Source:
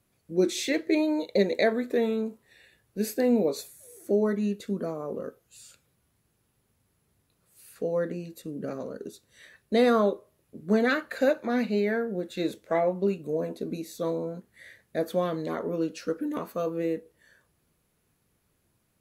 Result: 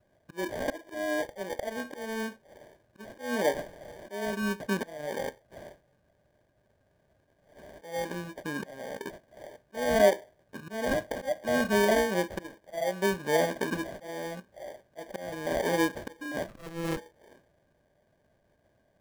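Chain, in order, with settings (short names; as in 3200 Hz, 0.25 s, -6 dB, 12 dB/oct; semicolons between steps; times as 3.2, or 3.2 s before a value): sample-and-hold 33×; small resonant body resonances 610/1600 Hz, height 14 dB, ringing for 30 ms; auto swell 0.523 s; on a send at -17.5 dB: reverb RT60 0.20 s, pre-delay 3 ms; 16.48–16.97 on the sum: running maximum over 33 samples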